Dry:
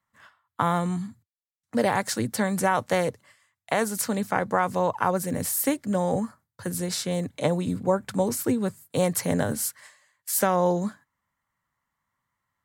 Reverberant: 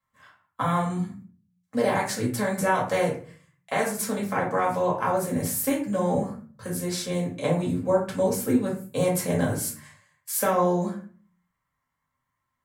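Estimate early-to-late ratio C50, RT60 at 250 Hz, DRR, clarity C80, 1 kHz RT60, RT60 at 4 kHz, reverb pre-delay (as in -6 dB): 7.0 dB, 0.55 s, -4.0 dB, 12.0 dB, 0.40 s, 0.30 s, 4 ms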